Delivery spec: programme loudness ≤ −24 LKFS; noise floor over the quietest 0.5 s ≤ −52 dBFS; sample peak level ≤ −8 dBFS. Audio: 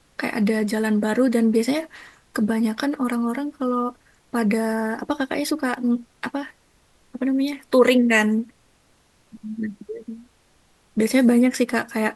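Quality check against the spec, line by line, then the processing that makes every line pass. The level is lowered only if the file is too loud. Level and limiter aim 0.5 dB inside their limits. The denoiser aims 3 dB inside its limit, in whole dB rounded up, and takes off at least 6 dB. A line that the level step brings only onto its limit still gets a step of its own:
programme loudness −22.0 LKFS: out of spec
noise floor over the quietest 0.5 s −60 dBFS: in spec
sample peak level −4.5 dBFS: out of spec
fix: level −2.5 dB
brickwall limiter −8.5 dBFS

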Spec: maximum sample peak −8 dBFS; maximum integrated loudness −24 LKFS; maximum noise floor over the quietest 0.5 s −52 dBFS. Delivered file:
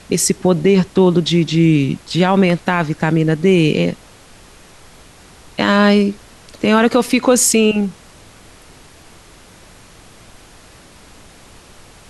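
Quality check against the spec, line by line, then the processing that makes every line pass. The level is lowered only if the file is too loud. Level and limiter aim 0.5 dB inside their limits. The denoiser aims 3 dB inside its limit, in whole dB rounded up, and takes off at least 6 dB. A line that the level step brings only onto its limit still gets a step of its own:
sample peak −3.0 dBFS: out of spec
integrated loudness −14.5 LKFS: out of spec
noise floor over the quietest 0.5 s −43 dBFS: out of spec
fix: level −10 dB

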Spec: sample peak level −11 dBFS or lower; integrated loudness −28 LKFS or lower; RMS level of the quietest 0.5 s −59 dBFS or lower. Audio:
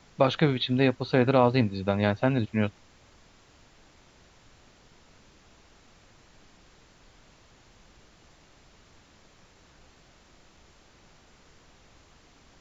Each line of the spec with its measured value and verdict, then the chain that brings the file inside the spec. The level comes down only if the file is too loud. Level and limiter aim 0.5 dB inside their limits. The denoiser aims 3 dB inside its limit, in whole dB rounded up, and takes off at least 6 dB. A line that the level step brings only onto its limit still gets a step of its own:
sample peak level −7.0 dBFS: out of spec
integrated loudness −25.0 LKFS: out of spec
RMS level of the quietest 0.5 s −57 dBFS: out of spec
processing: level −3.5 dB
brickwall limiter −11.5 dBFS

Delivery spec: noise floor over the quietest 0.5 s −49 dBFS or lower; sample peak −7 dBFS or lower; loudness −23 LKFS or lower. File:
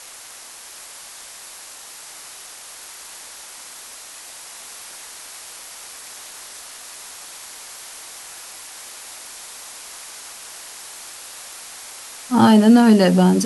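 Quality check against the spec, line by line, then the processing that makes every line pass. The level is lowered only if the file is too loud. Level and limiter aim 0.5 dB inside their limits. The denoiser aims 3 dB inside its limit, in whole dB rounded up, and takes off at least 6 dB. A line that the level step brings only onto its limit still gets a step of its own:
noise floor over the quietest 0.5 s −40 dBFS: out of spec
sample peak −3.0 dBFS: out of spec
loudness −13.0 LKFS: out of spec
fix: level −10.5 dB

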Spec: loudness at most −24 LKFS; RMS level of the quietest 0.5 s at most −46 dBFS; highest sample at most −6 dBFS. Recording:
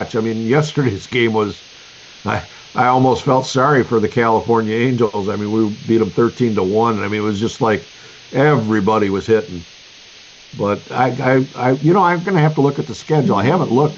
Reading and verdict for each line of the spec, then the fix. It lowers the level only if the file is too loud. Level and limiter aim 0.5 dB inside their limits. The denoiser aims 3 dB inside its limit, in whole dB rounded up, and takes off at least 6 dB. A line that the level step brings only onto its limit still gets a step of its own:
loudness −16.0 LKFS: out of spec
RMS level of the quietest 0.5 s −41 dBFS: out of spec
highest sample −3.5 dBFS: out of spec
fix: level −8.5 dB

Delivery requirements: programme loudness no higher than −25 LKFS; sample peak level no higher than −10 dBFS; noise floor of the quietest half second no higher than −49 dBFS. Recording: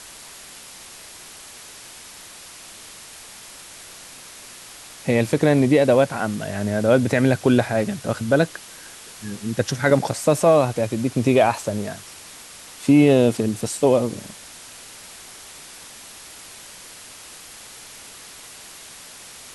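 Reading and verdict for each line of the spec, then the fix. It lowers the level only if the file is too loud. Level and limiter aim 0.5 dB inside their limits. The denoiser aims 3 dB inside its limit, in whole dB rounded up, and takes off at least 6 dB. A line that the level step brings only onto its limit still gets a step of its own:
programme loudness −19.5 LKFS: out of spec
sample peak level −5.0 dBFS: out of spec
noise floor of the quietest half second −42 dBFS: out of spec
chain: broadband denoise 6 dB, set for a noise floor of −42 dBFS
level −6 dB

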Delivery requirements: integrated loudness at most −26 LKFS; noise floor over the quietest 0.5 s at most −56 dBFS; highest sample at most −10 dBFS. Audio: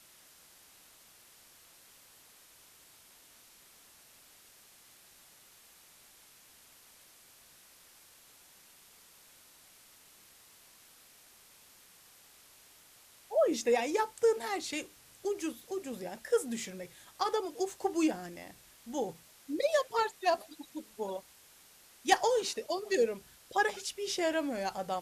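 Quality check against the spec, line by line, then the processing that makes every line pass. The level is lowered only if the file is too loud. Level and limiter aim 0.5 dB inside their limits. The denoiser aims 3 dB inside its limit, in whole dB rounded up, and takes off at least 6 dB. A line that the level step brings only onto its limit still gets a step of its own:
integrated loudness −33.0 LKFS: in spec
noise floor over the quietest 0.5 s −59 dBFS: in spec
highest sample −13.0 dBFS: in spec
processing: no processing needed

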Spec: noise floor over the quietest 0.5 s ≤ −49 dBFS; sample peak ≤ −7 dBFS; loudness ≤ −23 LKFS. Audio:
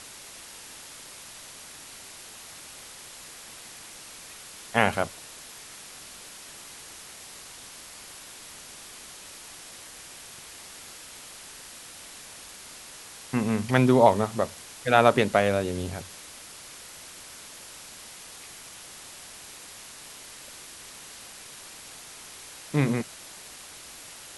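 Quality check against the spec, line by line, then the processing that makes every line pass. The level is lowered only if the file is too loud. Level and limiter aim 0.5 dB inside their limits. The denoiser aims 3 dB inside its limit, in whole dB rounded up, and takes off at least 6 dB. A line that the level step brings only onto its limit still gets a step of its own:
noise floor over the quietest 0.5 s −45 dBFS: out of spec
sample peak −3.0 dBFS: out of spec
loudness −24.5 LKFS: in spec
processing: broadband denoise 7 dB, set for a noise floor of −45 dBFS
brickwall limiter −7.5 dBFS

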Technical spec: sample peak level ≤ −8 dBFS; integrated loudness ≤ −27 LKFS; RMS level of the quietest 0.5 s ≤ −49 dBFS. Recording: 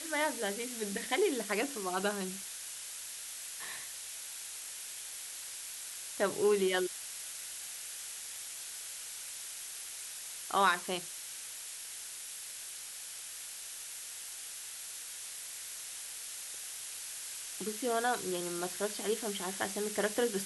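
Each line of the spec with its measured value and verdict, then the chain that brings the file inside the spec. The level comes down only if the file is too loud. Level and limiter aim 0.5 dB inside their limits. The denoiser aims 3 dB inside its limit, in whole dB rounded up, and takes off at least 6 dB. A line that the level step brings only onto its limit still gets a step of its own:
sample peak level −14.0 dBFS: in spec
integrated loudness −36.5 LKFS: in spec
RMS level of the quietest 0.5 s −45 dBFS: out of spec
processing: broadband denoise 7 dB, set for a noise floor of −45 dBFS

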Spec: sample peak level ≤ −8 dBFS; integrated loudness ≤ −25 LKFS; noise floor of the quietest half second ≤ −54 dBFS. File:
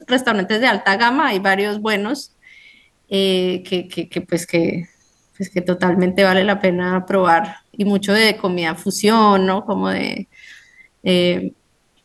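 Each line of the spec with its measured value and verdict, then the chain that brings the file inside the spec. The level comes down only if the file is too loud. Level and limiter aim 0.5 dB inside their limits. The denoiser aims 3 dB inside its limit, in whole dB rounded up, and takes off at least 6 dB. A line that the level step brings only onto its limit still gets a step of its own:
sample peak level −2.0 dBFS: out of spec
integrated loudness −17.5 LKFS: out of spec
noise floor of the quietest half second −61 dBFS: in spec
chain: level −8 dB

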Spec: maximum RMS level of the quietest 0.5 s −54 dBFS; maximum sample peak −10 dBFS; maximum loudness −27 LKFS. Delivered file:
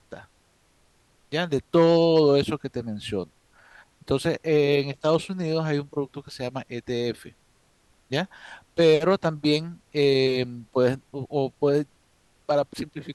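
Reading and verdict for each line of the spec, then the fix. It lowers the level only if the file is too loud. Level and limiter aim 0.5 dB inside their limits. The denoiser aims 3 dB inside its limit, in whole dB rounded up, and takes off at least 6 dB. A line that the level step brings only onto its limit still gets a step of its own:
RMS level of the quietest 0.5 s −63 dBFS: in spec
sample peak −7.5 dBFS: out of spec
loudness −24.5 LKFS: out of spec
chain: level −3 dB

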